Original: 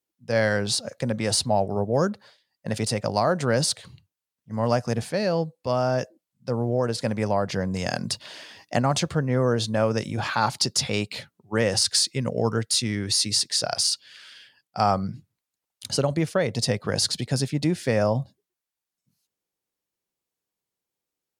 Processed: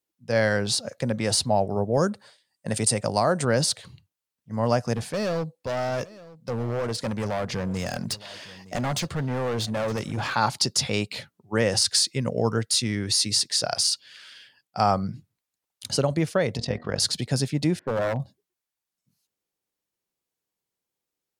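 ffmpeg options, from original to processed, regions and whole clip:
-filter_complex "[0:a]asettb=1/sr,asplit=3[a][b][c];[a]atrim=end=1.974[d];[b]atrim=start=1.97:end=3.45,asetpts=PTS-STARTPTS,afade=t=in:d=0.004:c=qsin,afade=t=out:st=1.476:d=0.004:c=qsin,highpass=49,equalizer=f=8.6k:w=2.7:g=12.5[e];[c]atrim=start=3.446[f];[d][e]acrossfade=d=0.004:c1=hsin:c2=qsin[g];[g][f]acrossfade=d=0.004:c1=qsin:c2=hsin,asettb=1/sr,asplit=3[h][i][j];[h]atrim=end=4.964[k];[i]atrim=start=4.96:end=10.34,asetpts=PTS-STARTPTS,afade=t=in:d=0.004:c=qsin,afade=t=out:st=5.376:d=0.004:c=qsin,volume=23.5dB,asoftclip=hard,volume=-23.5dB,aecho=1:1:915:0.106,atrim=end_sample=237258[l];[j]atrim=start=10.336[m];[k][l]acrossfade=d=0.004:c1=hsin:c2=qsin[n];[n][m]acrossfade=d=0.004:c1=qsin:c2=hsin,asettb=1/sr,asplit=3[o][p][q];[o]atrim=end=16.574[r];[p]atrim=start=16.57:end=17,asetpts=PTS-STARTPTS,afade=t=in:d=0.004:c=qsin,afade=t=out:st=0.426:d=0.004:c=qsin,lowpass=4.3k,bandreject=f=79.58:t=h:w=4,bandreject=f=159.16:t=h:w=4,bandreject=f=238.74:t=h:w=4,bandreject=f=318.32:t=h:w=4,bandreject=f=397.9:t=h:w=4,bandreject=f=477.48:t=h:w=4,bandreject=f=557.06:t=h:w=4,bandreject=f=636.64:t=h:w=4,bandreject=f=716.22:t=h:w=4,bandreject=f=795.8:t=h:w=4,bandreject=f=875.38:t=h:w=4,bandreject=f=954.96:t=h:w=4,bandreject=f=1.03454k:t=h:w=4,bandreject=f=1.11412k:t=h:w=4,bandreject=f=1.1937k:t=h:w=4,bandreject=f=1.27328k:t=h:w=4,bandreject=f=1.35286k:t=h:w=4,bandreject=f=1.43244k:t=h:w=4,bandreject=f=1.51202k:t=h:w=4,bandreject=f=1.5916k:t=h:w=4,bandreject=f=1.67118k:t=h:w=4,bandreject=f=1.75076k:t=h:w=4,bandreject=f=1.83034k:t=h:w=4,bandreject=f=1.90992k:t=h:w=4,bandreject=f=1.9895k:t=h:w=4,tremolo=f=43:d=0.71[s];[q]atrim=start=16.996[t];[r][s]acrossfade=d=0.004:c1=hsin:c2=qsin[u];[u][t]acrossfade=d=0.004:c1=qsin:c2=hsin,asettb=1/sr,asplit=3[v][w][x];[v]atrim=end=17.794[y];[w]atrim=start=17.79:end=18.2,asetpts=PTS-STARTPTS,afade=t=in:d=0.004:c=qsin,afade=t=out:st=0.406:d=0.004:c=qsin,lowpass=f=1.1k:w=0.5412,lowpass=f=1.1k:w=1.3066,tiltshelf=f=690:g=-3.5,aeval=exprs='0.112*(abs(mod(val(0)/0.112+3,4)-2)-1)':c=same[z];[x]atrim=start=18.196[aa];[y][z]acrossfade=d=0.004:c1=hsin:c2=qsin[ab];[ab][aa]acrossfade=d=0.004:c1=qsin:c2=hsin"

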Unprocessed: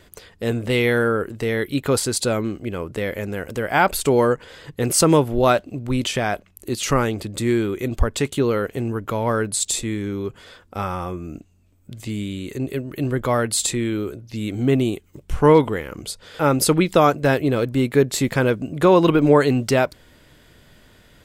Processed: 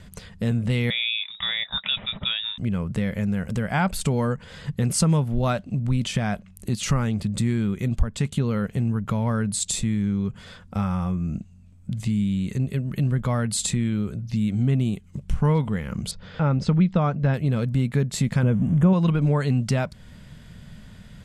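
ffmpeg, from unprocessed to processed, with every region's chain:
-filter_complex "[0:a]asettb=1/sr,asplit=3[a][b][c];[a]atrim=end=0.904[d];[b]atrim=start=0.9:end=2.58,asetpts=PTS-STARTPTS,afade=t=in:d=0.004:c=qsin,afade=t=out:st=1.676:d=0.004:c=qsin,aemphasis=mode=production:type=bsi,lowpass=f=3.3k:t=q:w=0.5098,lowpass=f=3.3k:t=q:w=0.6013,lowpass=f=3.3k:t=q:w=0.9,lowpass=f=3.3k:t=q:w=2.563,afreqshift=-3900[e];[c]atrim=start=2.576[f];[d][e]acrossfade=d=0.004:c1=hsin:c2=qsin[g];[g][f]acrossfade=d=0.004:c1=qsin:c2=hsin,asettb=1/sr,asplit=3[h][i][j];[h]atrim=end=16.114[k];[i]atrim=start=16.11:end=17.34,asetpts=PTS-STARTPTS,afade=t=in:d=0.004:c=qsin,afade=t=out:st=1.226:d=0.004:c=qsin,lowpass=f=6.5k:w=0.5412,lowpass=f=6.5k:w=1.3066,aemphasis=mode=reproduction:type=75fm[l];[j]atrim=start=17.336[m];[k][l]acrossfade=d=0.004:c1=hsin:c2=qsin[n];[n][m]acrossfade=d=0.004:c1=qsin:c2=hsin,asettb=1/sr,asplit=3[o][p][q];[o]atrim=end=18.434[r];[p]atrim=start=18.43:end=18.93,asetpts=PTS-STARTPTS,afade=t=in:d=0.004:c=qsin,afade=t=out:st=0.496:d=0.004:c=qsin,aeval=exprs='val(0)+0.5*0.0251*sgn(val(0))':c=same,asuperstop=centerf=4500:order=12:qfactor=2,tiltshelf=f=920:g=5.5[s];[q]atrim=start=18.926[t];[r][s]acrossfade=d=0.004:c1=hsin:c2=qsin[u];[u][t]acrossfade=d=0.004:c1=qsin:c2=hsin,lowpass=f=11k:w=0.5412,lowpass=f=11k:w=1.3066,lowshelf=f=250:t=q:w=3:g=8,acompressor=threshold=-25dB:ratio=2"

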